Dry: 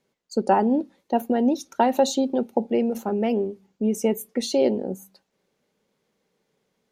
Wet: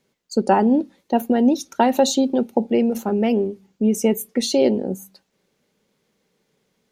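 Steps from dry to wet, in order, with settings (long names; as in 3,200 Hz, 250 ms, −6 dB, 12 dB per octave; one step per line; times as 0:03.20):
parametric band 730 Hz −4 dB 2.2 octaves
level +6 dB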